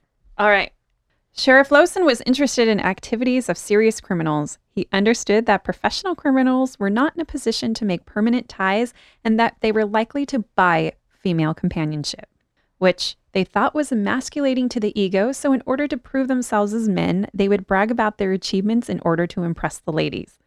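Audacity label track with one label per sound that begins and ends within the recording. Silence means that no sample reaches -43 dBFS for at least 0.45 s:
1.360000	12.240000	sound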